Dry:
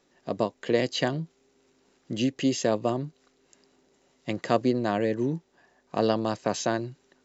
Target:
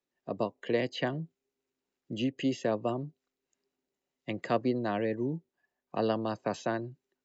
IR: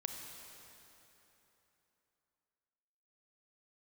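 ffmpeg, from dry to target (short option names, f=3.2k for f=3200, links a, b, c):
-filter_complex "[0:a]afftdn=nr=18:nf=-45,equalizer=f=2.5k:w=1.5:g=3,acrossover=split=180|600|3200[a][b][c][d];[d]acompressor=threshold=-45dB:ratio=6[e];[a][b][c][e]amix=inputs=4:normalize=0,volume=-5dB"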